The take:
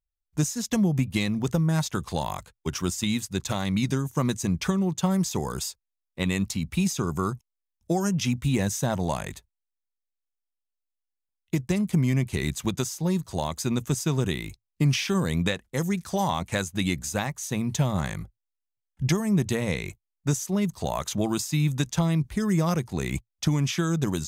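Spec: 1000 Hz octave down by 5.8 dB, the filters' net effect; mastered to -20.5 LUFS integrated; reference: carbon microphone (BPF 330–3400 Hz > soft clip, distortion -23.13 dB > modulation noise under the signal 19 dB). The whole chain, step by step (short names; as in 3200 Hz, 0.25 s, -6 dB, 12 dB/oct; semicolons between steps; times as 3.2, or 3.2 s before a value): BPF 330–3400 Hz; bell 1000 Hz -7.5 dB; soft clip -19 dBFS; modulation noise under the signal 19 dB; gain +14.5 dB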